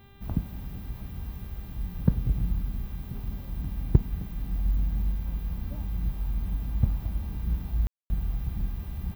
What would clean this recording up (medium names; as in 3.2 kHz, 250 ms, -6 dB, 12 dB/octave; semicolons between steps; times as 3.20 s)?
clip repair -7.5 dBFS; de-hum 397.1 Hz, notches 10; room tone fill 7.87–8.10 s